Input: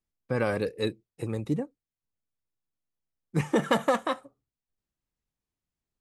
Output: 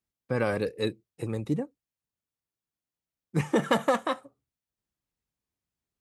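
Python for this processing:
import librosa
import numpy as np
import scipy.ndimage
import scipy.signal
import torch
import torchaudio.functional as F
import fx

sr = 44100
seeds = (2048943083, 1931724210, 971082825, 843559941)

y = scipy.signal.sosfilt(scipy.signal.butter(2, 48.0, 'highpass', fs=sr, output='sos'), x)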